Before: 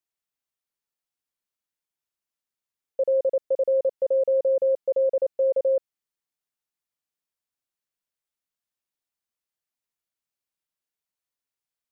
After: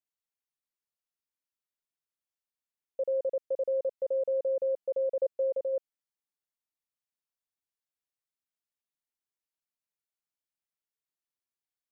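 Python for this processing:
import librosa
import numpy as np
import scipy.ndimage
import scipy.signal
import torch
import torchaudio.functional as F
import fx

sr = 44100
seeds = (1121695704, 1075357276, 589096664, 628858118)

y = fx.peak_eq(x, sr, hz=500.0, db=fx.line((5.19, 4.0), (5.72, -3.0)), octaves=0.77, at=(5.19, 5.72), fade=0.02)
y = y * librosa.db_to_amplitude(-7.5)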